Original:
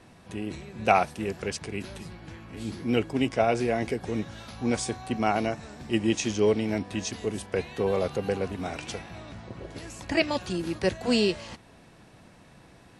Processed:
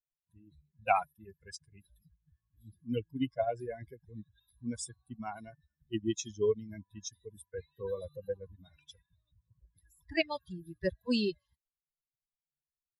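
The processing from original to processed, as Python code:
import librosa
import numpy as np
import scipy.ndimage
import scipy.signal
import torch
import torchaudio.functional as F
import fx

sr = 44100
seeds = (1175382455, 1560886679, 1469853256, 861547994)

y = fx.bin_expand(x, sr, power=3.0)
y = F.gain(torch.from_numpy(y), -2.5).numpy()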